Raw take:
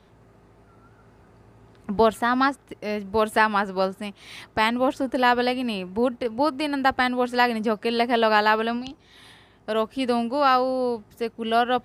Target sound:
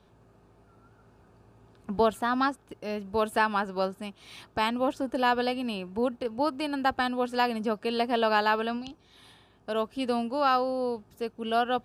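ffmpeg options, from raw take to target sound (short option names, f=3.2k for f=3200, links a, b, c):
-af "bandreject=f=2k:w=5.3,volume=-5dB"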